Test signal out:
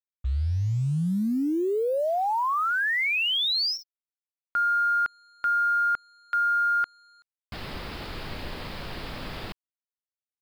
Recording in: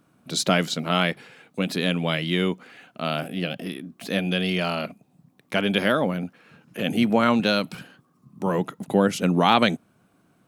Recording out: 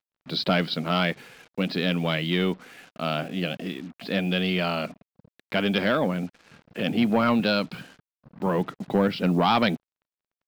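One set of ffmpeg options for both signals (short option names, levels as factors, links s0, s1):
-af "aresample=11025,asoftclip=type=tanh:threshold=0.237,aresample=44100,acrusher=bits=7:mix=0:aa=0.5"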